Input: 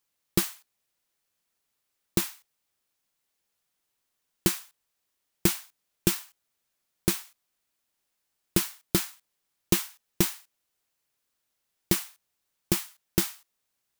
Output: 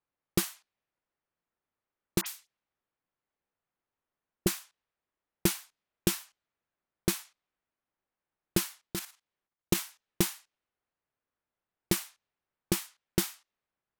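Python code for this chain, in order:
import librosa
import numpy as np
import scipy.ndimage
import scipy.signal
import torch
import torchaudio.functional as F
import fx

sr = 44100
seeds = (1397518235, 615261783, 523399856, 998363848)

y = fx.env_lowpass(x, sr, base_hz=1600.0, full_db=-26.5)
y = fx.dispersion(y, sr, late='highs', ms=54.0, hz=2500.0, at=(2.21, 4.47))
y = fx.level_steps(y, sr, step_db=10, at=(8.86, 9.74), fade=0.02)
y = F.gain(torch.from_numpy(y), -2.5).numpy()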